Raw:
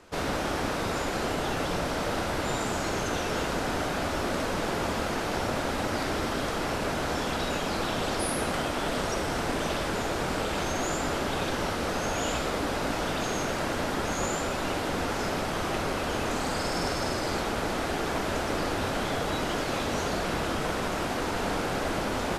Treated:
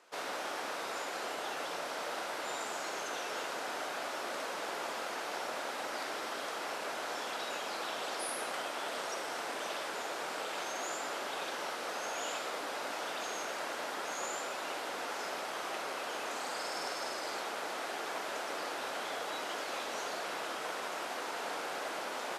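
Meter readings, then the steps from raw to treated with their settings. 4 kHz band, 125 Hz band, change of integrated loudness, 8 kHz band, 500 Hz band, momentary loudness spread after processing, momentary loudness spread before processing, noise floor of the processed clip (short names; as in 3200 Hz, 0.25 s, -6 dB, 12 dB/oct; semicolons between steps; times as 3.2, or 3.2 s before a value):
-6.5 dB, -30.0 dB, -8.5 dB, -6.5 dB, -10.0 dB, 1 LU, 1 LU, -40 dBFS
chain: HPF 540 Hz 12 dB/oct; gain -6.5 dB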